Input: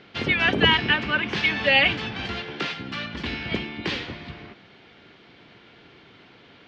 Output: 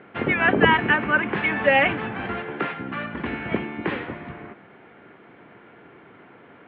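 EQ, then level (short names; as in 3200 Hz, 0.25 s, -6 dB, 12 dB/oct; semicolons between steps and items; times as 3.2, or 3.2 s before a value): HPF 230 Hz 6 dB/oct; Chebyshev low-pass 1700 Hz, order 2; air absorption 420 m; +7.5 dB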